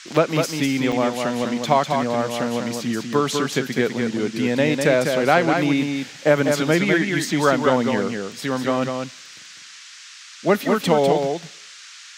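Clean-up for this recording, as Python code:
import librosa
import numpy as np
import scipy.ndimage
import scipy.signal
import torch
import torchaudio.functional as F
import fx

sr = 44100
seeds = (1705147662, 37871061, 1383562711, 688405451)

y = fx.fix_interpolate(x, sr, at_s=(0.92,), length_ms=5.3)
y = fx.noise_reduce(y, sr, print_start_s=9.83, print_end_s=10.33, reduce_db=23.0)
y = fx.fix_echo_inverse(y, sr, delay_ms=200, level_db=-5.0)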